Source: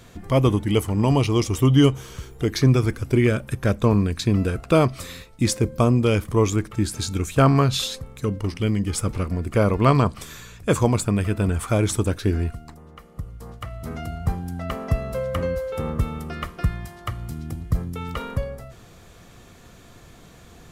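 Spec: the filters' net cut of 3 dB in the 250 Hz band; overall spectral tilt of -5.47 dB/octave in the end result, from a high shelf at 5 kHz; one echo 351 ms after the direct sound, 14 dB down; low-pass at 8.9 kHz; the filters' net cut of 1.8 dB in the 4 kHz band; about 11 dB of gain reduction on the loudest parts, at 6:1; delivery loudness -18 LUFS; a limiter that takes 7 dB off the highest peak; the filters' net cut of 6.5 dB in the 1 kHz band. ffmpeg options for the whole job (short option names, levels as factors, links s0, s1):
-af "lowpass=8900,equalizer=f=250:t=o:g=-3.5,equalizer=f=1000:t=o:g=-8.5,equalizer=f=4000:t=o:g=-3,highshelf=f=5000:g=3,acompressor=threshold=0.0501:ratio=6,alimiter=limit=0.0841:level=0:latency=1,aecho=1:1:351:0.2,volume=5.96"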